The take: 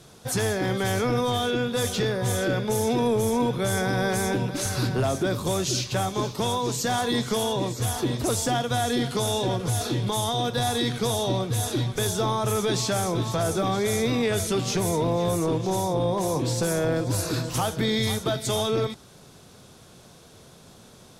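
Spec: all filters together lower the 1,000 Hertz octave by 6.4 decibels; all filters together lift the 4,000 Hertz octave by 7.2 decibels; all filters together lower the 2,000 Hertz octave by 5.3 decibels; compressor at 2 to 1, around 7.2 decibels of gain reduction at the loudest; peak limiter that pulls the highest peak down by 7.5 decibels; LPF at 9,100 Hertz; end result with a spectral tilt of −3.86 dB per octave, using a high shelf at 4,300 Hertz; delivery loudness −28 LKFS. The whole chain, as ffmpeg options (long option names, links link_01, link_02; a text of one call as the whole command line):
ffmpeg -i in.wav -af "lowpass=9100,equalizer=frequency=1000:width_type=o:gain=-8.5,equalizer=frequency=2000:width_type=o:gain=-7,equalizer=frequency=4000:width_type=o:gain=8.5,highshelf=frequency=4300:gain=5,acompressor=threshold=-32dB:ratio=2,volume=5dB,alimiter=limit=-20.5dB:level=0:latency=1" out.wav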